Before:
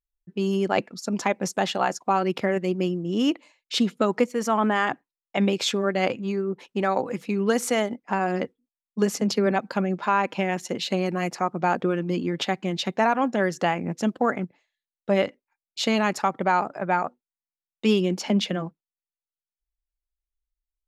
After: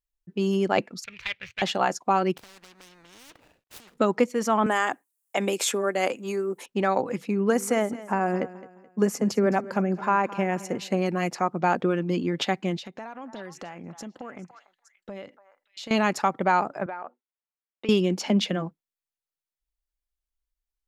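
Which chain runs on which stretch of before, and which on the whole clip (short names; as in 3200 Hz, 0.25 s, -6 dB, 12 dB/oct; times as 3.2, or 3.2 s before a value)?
1.04–1.62 median filter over 25 samples + EQ curve 110 Hz 0 dB, 230 Hz -30 dB, 480 Hz -20 dB, 770 Hz -23 dB, 2300 Hz +14 dB, 5300 Hz -2 dB, 9000 Hz -13 dB
2.37–3.98 median filter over 41 samples + compressor 5:1, threshold -36 dBFS + spectral compressor 4:1
4.66–6.66 HPF 320 Hz + resonant high shelf 6400 Hz +13 dB, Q 1.5 + three-band squash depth 40%
7.27–11.02 bell 3700 Hz -11.5 dB 0.98 oct + feedback echo 0.214 s, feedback 35%, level -17 dB
12.78–15.91 compressor 4:1, threshold -38 dBFS + delay with a stepping band-pass 0.289 s, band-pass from 1100 Hz, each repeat 1.4 oct, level -7.5 dB
16.86–17.89 BPF 370–2600 Hz + compressor 16:1, threshold -30 dBFS
whole clip: dry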